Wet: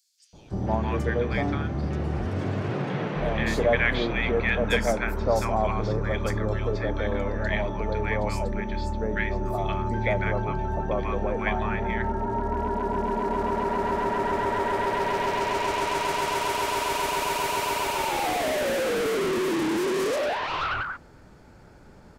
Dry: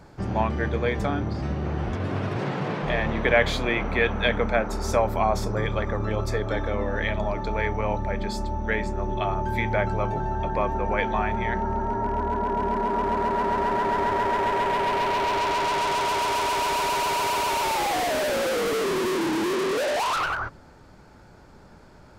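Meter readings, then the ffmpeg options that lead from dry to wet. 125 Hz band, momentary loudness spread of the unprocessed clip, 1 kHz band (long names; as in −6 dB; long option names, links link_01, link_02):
0.0 dB, 5 LU, −3.0 dB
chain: -filter_complex "[0:a]acrossover=split=1000|4400[link_01][link_02][link_03];[link_01]adelay=330[link_04];[link_02]adelay=480[link_05];[link_04][link_05][link_03]amix=inputs=3:normalize=0"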